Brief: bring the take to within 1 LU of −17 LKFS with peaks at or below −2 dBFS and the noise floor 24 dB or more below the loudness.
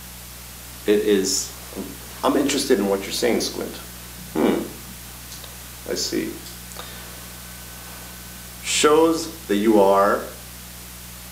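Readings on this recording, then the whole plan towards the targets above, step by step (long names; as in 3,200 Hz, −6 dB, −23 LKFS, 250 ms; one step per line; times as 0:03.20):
mains hum 60 Hz; hum harmonics up to 180 Hz; level of the hum −40 dBFS; background noise floor −38 dBFS; target noise floor −45 dBFS; integrated loudness −21.0 LKFS; sample peak −4.0 dBFS; target loudness −17.0 LKFS
→ hum removal 60 Hz, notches 3
noise reduction from a noise print 7 dB
level +4 dB
brickwall limiter −2 dBFS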